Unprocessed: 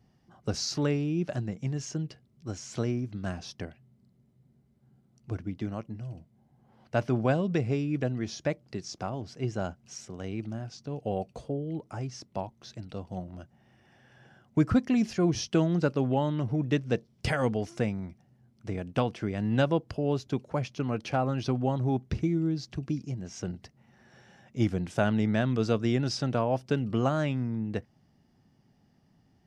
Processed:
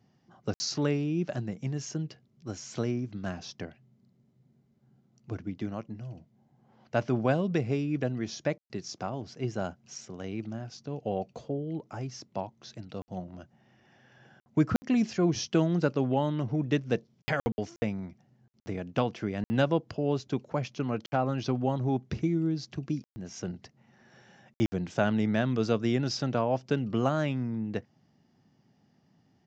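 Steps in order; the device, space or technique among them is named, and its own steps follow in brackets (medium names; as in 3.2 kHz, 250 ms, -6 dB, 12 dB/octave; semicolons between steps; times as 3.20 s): call with lost packets (high-pass 110 Hz; resampled via 16 kHz; lost packets of 60 ms)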